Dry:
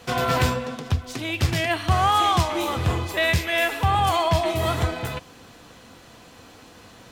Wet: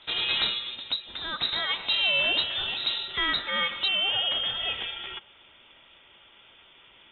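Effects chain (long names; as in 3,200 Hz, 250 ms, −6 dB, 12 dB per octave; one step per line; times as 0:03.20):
high-pass filter 98 Hz 24 dB per octave, from 0:03.88 370 Hz
voice inversion scrambler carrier 3,900 Hz
level −5 dB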